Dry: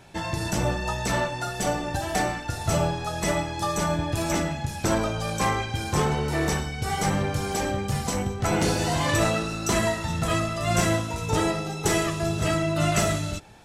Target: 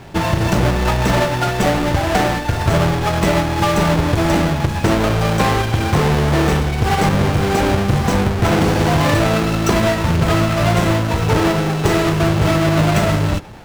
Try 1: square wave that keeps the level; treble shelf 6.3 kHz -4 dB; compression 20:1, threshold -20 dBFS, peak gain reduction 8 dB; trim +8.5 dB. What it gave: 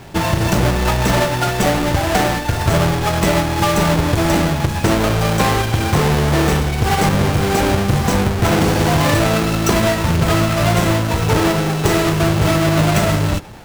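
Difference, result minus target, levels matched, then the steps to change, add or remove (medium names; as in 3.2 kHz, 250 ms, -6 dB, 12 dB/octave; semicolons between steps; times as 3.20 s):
8 kHz band +3.5 dB
change: treble shelf 6.3 kHz -11 dB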